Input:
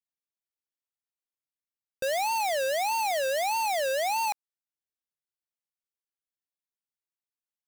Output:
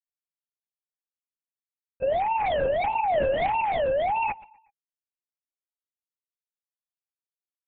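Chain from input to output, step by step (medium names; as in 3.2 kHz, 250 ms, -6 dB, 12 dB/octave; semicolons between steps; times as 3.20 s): formants replaced by sine waves; peaking EQ 530 Hz +10.5 dB 0.34 oct; peak limiter -23.5 dBFS, peak gain reduction 11 dB; feedback delay 124 ms, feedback 40%, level -22 dB; LPC vocoder at 8 kHz whisper; trim +3.5 dB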